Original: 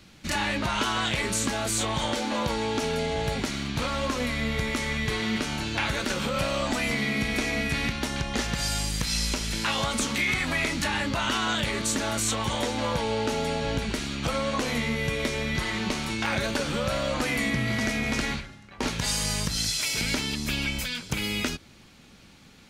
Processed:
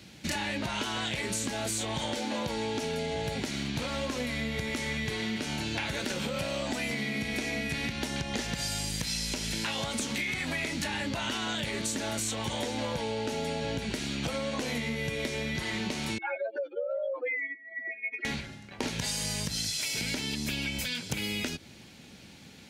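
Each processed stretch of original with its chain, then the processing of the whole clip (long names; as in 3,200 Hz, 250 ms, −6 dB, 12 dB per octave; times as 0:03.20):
0:16.18–0:18.25: expanding power law on the bin magnitudes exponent 3.7 + Butterworth high-pass 350 Hz 72 dB per octave
whole clip: high-pass filter 76 Hz; parametric band 1,200 Hz −8 dB 0.5 octaves; downward compressor, threshold −32 dBFS; level +2.5 dB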